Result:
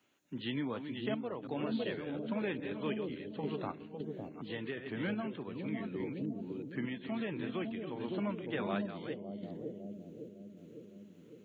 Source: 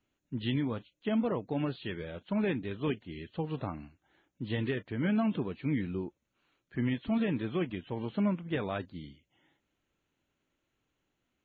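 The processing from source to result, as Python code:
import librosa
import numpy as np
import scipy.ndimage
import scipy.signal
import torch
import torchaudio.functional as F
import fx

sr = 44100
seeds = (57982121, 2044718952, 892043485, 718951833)

y = fx.reverse_delay(x, sr, ms=368, wet_db=-9)
y = scipy.signal.sosfilt(scipy.signal.butter(2, 130.0, 'highpass', fs=sr, output='sos'), y)
y = fx.low_shelf(y, sr, hz=280.0, db=-8.0)
y = fx.echo_bbd(y, sr, ms=556, stages=2048, feedback_pct=50, wet_db=-3.0)
y = fx.tremolo_random(y, sr, seeds[0], hz=3.5, depth_pct=55)
y = fx.band_squash(y, sr, depth_pct=40)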